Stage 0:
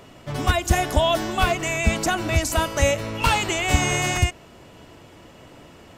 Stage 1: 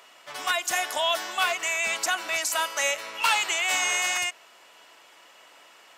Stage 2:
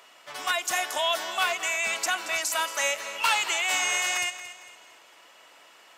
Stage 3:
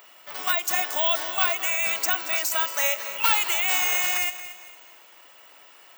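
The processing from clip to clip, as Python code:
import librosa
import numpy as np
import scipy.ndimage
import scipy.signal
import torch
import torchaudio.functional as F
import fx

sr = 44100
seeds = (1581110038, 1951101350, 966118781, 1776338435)

y1 = scipy.signal.sosfilt(scipy.signal.butter(2, 1000.0, 'highpass', fs=sr, output='sos'), x)
y2 = fx.echo_feedback(y1, sr, ms=227, feedback_pct=38, wet_db=-13.5)
y2 = y2 * librosa.db_to_amplitude(-1.0)
y3 = (np.kron(scipy.signal.resample_poly(y2, 1, 2), np.eye(2)[0]) * 2)[:len(y2)]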